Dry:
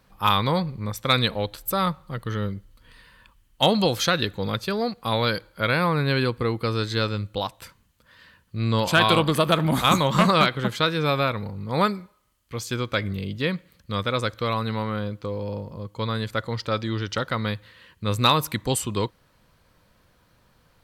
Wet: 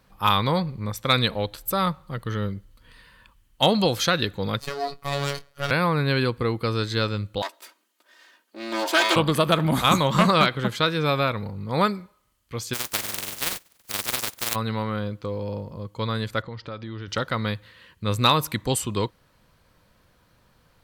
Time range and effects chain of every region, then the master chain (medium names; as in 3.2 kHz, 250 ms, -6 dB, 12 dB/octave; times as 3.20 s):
4.60–5.71 s: comb filter that takes the minimum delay 1.6 ms + robot voice 141 Hz + doubling 24 ms -12 dB
7.42–9.16 s: comb filter that takes the minimum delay 3.2 ms + high-pass 320 Hz 24 dB/octave + doubling 13 ms -13 dB
12.73–14.54 s: spectral contrast reduction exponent 0.11 + AM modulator 21 Hz, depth 40%
16.42–17.08 s: compression 3:1, threshold -33 dBFS + distance through air 160 m
whole clip: none